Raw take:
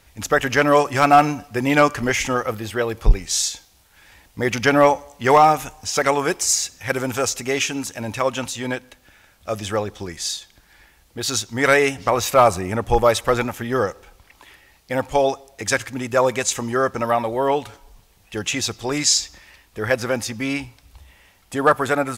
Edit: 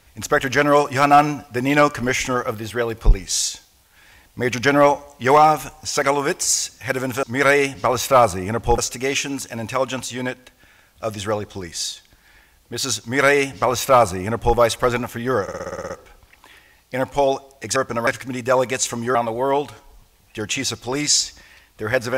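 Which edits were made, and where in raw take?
11.46–13.01 s: copy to 7.23 s
13.87 s: stutter 0.06 s, 9 plays
16.81–17.12 s: move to 15.73 s

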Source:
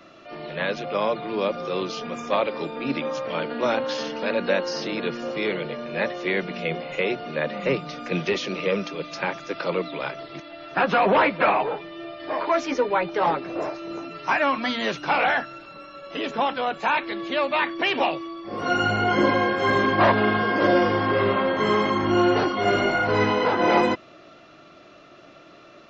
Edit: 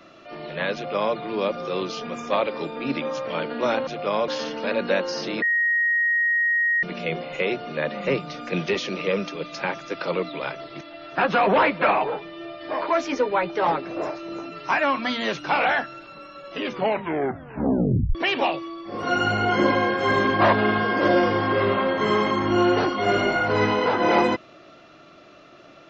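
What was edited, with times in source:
0.75–1.16 s: copy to 3.87 s
5.01–6.42 s: bleep 1.88 kHz -18 dBFS
16.13 s: tape stop 1.61 s

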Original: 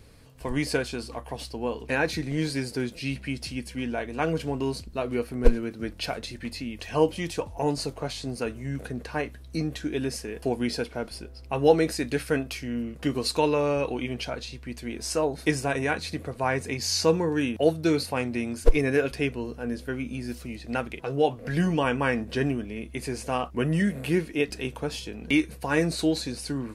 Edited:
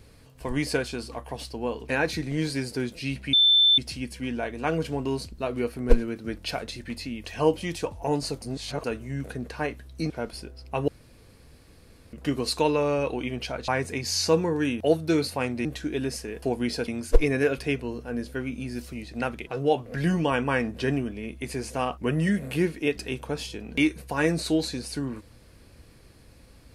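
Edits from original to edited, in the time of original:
3.33 s: add tone 3.54 kHz -15 dBFS 0.45 s
7.97–8.39 s: reverse
9.65–10.88 s: move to 18.41 s
11.66–12.91 s: room tone
14.46–16.44 s: delete

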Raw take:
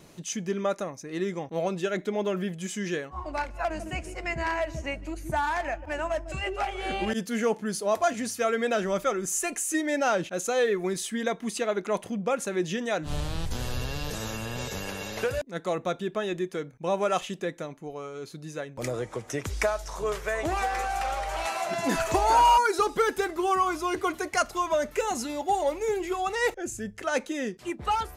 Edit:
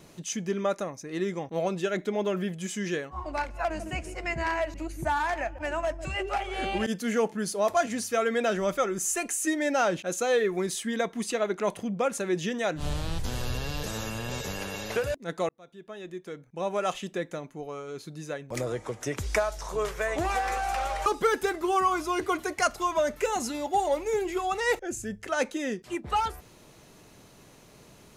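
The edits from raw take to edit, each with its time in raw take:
4.74–5.01 s: delete
15.76–17.56 s: fade in
21.33–22.81 s: delete

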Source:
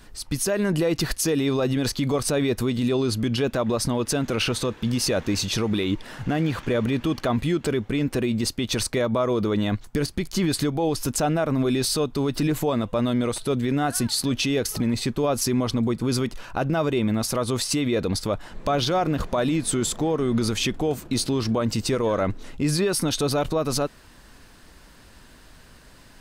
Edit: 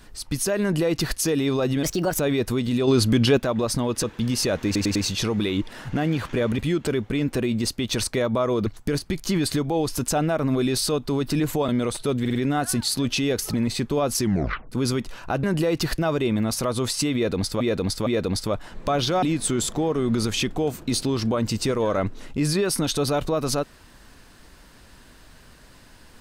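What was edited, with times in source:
0.62–1.17 s: copy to 16.70 s
1.83–2.30 s: speed 129%
2.98–3.48 s: gain +5.5 dB
4.14–4.67 s: delete
5.29 s: stutter 0.10 s, 4 plays
6.92–7.38 s: delete
9.46–9.74 s: delete
12.76–13.10 s: delete
13.62 s: stutter 0.05 s, 4 plays
15.48 s: tape stop 0.50 s
17.86–18.32 s: loop, 3 plays
19.02–19.46 s: delete

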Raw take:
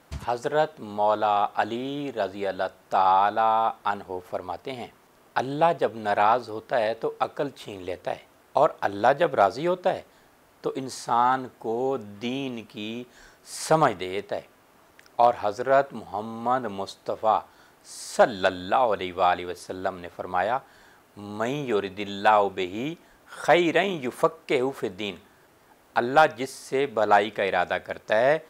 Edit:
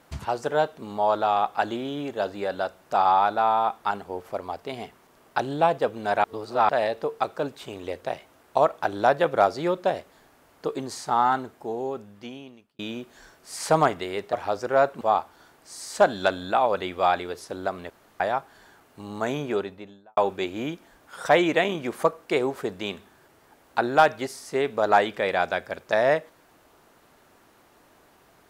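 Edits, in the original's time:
6.24–6.69 s: reverse
11.33–12.79 s: fade out
14.33–15.29 s: delete
15.97–17.20 s: delete
20.09–20.39 s: room tone
21.55–22.36 s: studio fade out

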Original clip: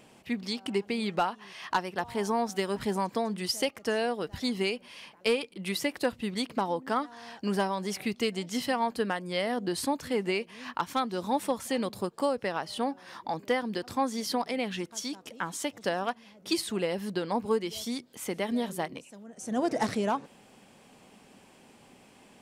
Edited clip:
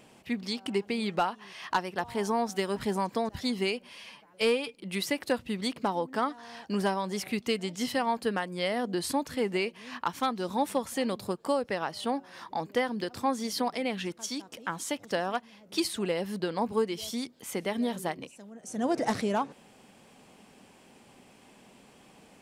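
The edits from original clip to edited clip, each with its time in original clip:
3.29–4.28 s: delete
4.97–5.48 s: stretch 1.5×

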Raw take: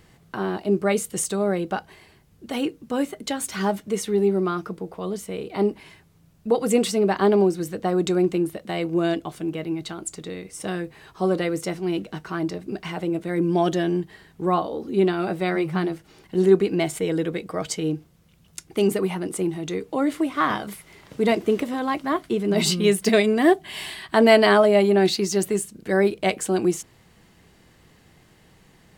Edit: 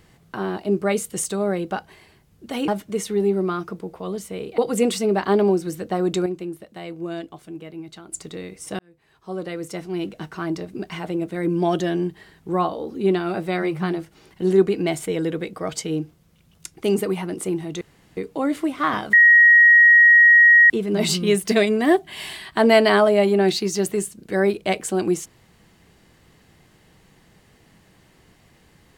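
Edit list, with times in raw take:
2.68–3.66 s: delete
5.56–6.51 s: delete
8.19–10.05 s: gain -8 dB
10.72–12.17 s: fade in
19.74 s: insert room tone 0.36 s
20.70–22.27 s: bleep 1.89 kHz -8 dBFS

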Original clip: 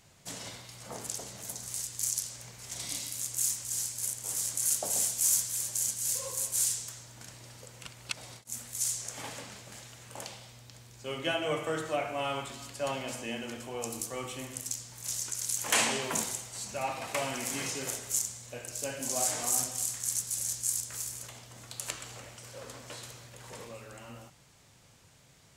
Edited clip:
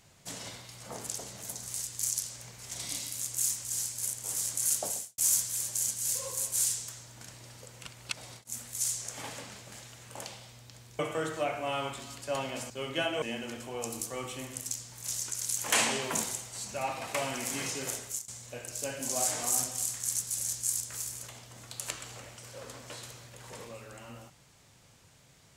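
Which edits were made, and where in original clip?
4.87–5.18 s: fade out quadratic
10.99–11.51 s: move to 13.22 s
18.01–18.28 s: fade out, to -23 dB

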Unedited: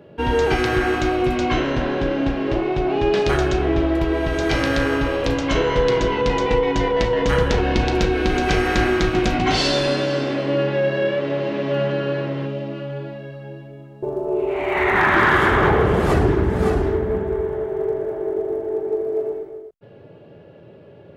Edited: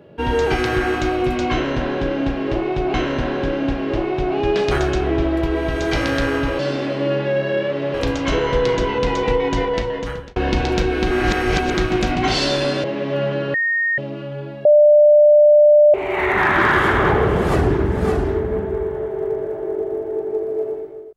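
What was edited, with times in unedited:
1.52–2.94 s: loop, 2 plays
6.84–7.59 s: fade out
8.34–8.97 s: reverse
10.07–11.42 s: move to 5.17 s
12.12–12.56 s: bleep 1.85 kHz -16 dBFS
13.23–14.52 s: bleep 595 Hz -7 dBFS

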